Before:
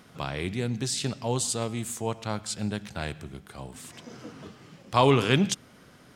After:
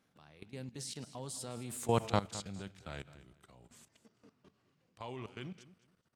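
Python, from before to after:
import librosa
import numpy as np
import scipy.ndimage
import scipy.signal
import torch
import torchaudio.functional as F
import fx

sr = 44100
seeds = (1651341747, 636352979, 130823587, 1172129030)

y = fx.doppler_pass(x, sr, speed_mps=25, closest_m=4.7, pass_at_s=2.01)
y = fx.level_steps(y, sr, step_db=16)
y = fx.echo_feedback(y, sr, ms=212, feedback_pct=21, wet_db=-16)
y = F.gain(torch.from_numpy(y), 4.5).numpy()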